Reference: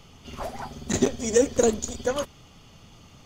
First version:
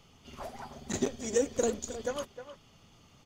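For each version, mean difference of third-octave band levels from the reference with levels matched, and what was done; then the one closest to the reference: 1.5 dB: bass shelf 110 Hz -4 dB; speakerphone echo 310 ms, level -11 dB; trim -8 dB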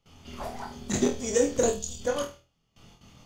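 3.5 dB: gate with hold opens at -40 dBFS; time-frequency box 1.70–2.01 s, 210–2500 Hz -13 dB; flutter echo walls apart 4.2 m, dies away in 0.3 s; trim -4 dB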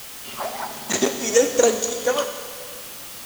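10.0 dB: frequency weighting A; in parallel at -4 dB: word length cut 6-bit, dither triangular; on the sum: Schroeder reverb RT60 2 s, combs from 28 ms, DRR 7.5 dB; trim +2 dB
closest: first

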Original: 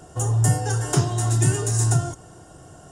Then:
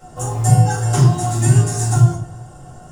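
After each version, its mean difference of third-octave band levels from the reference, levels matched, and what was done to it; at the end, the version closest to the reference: 4.0 dB: in parallel at -8 dB: short-mantissa float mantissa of 2-bit; on the sum: simulated room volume 360 m³, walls furnished, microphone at 6.7 m; trim -10 dB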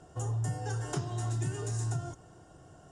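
2.5 dB: compression, threshold -20 dBFS, peak gain reduction 6.5 dB; distance through air 58 m; trim -9 dB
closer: second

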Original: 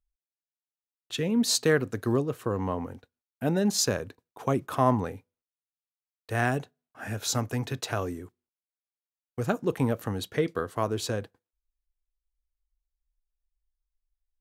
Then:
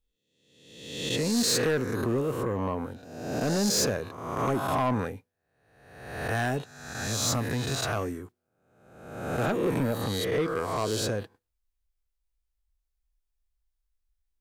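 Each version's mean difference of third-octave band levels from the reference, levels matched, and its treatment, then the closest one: 7.5 dB: reverse spectral sustain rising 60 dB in 1.00 s; saturation -20 dBFS, distortion -12 dB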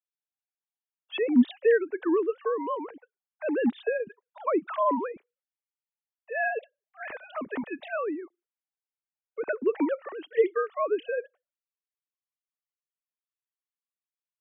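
16.5 dB: formants replaced by sine waves; in parallel at -1.5 dB: peak limiter -20.5 dBFS, peak gain reduction 12 dB; on the sum: trim -3.5 dB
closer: first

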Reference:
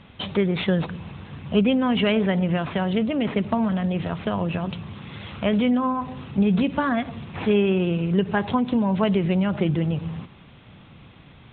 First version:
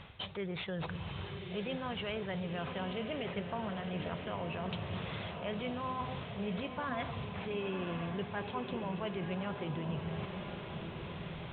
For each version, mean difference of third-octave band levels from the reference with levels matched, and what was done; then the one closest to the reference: 7.0 dB: peaking EQ 240 Hz -11 dB 0.93 oct; reverse; compression 5:1, threshold -40 dBFS, peak gain reduction 18.5 dB; reverse; echo that smears into a reverb 1030 ms, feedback 61%, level -6 dB; trim +2 dB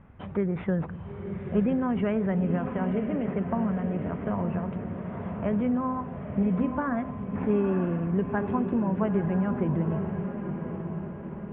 5.0 dB: low-pass 1.8 kHz 24 dB/octave; bass shelf 70 Hz +11.5 dB; on a send: echo that smears into a reverb 929 ms, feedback 56%, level -7 dB; on the sum: trim -6.5 dB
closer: second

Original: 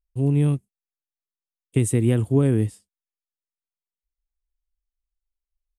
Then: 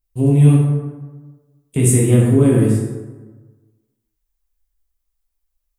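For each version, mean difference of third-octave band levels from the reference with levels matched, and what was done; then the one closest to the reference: 6.0 dB: treble shelf 8.1 kHz +10 dB; peak limiter -13 dBFS, peak gain reduction 5.5 dB; plate-style reverb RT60 1.3 s, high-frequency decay 0.5×, DRR -5.5 dB; trim +3 dB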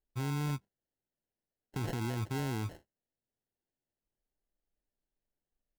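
12.5 dB: treble shelf 9.1 kHz +11 dB; peak limiter -19 dBFS, peak gain reduction 11 dB; sample-and-hold 37×; trim -8 dB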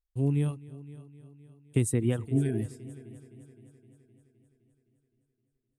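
3.0 dB: reverb removal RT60 1.8 s; spectral replace 2.36–2.60 s, 350–1400 Hz before; on a send: multi-head delay 258 ms, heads first and second, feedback 53%, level -21 dB; on the sum: trim -5 dB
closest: third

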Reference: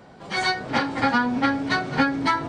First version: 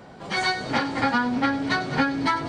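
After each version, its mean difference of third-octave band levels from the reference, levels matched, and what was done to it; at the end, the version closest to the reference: 1.5 dB: in parallel at +2 dB: compression, threshold -28 dBFS, peak gain reduction 12.5 dB; on the sum: feedback echo behind a high-pass 99 ms, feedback 72%, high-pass 3.3 kHz, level -10.5 dB; trim -4.5 dB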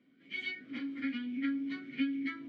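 11.0 dB: vowel filter i; sweeping bell 1.2 Hz 920–3000 Hz +11 dB; trim -8 dB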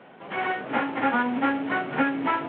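5.5 dB: CVSD coder 16 kbps; high-pass 220 Hz 12 dB/octave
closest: first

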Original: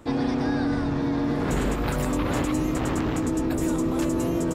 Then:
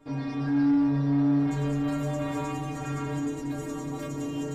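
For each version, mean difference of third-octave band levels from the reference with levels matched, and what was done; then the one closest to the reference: 6.5 dB: treble shelf 4.3 kHz -9 dB; inharmonic resonator 140 Hz, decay 0.75 s, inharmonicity 0.008; in parallel at 0 dB: saturation -37.5 dBFS, distortion -7 dB; on the sum: feedback echo behind a high-pass 183 ms, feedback 80%, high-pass 2.3 kHz, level -7.5 dB; trim +5 dB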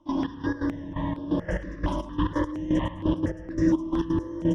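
10.5 dB: rippled EQ curve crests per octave 1.2, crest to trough 16 dB; trance gate ".xx..x.x.." 172 bpm -12 dB; distance through air 140 m; stepped phaser 4.3 Hz 480–6700 Hz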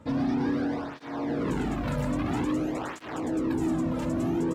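4.5 dB: low-pass 3.4 kHz 6 dB/octave; bass shelf 120 Hz +4.5 dB; hard clipper -21.5 dBFS, distortion -13 dB; cancelling through-zero flanger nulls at 0.5 Hz, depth 2.8 ms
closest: third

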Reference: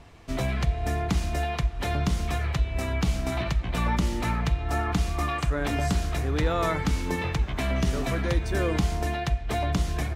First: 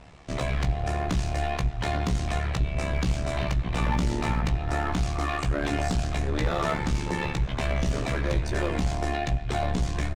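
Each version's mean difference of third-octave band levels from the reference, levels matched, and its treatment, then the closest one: 3.0 dB: steep low-pass 9.3 kHz 36 dB/octave; AM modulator 73 Hz, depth 95%; in parallel at -3.5 dB: wavefolder -27 dBFS; on the sum: doubling 17 ms -6 dB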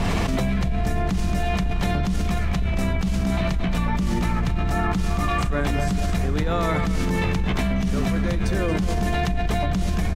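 4.0 dB: octave divider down 2 oct, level -2 dB; peaking EQ 190 Hz +13.5 dB 0.2 oct; on a send: feedback delay 224 ms, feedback 27%, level -10 dB; on the sum: level flattener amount 100%; trim -7.5 dB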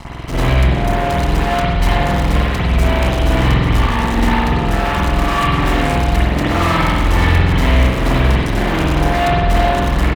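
5.5 dB: peaking EQ 300 Hz +5.5 dB 0.42 oct; comb 1 ms, depth 81%; fuzz box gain 39 dB, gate -45 dBFS; spring tank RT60 1.3 s, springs 47 ms, chirp 55 ms, DRR -9 dB; trim -9 dB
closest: first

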